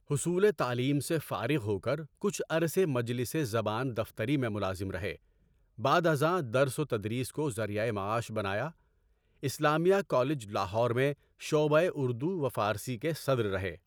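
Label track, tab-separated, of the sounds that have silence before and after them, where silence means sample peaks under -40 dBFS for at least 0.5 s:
5.790000	8.690000	sound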